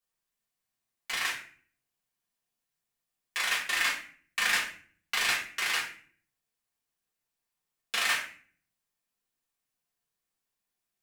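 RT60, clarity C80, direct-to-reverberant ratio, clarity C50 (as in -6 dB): 0.45 s, 11.5 dB, -5.5 dB, 7.5 dB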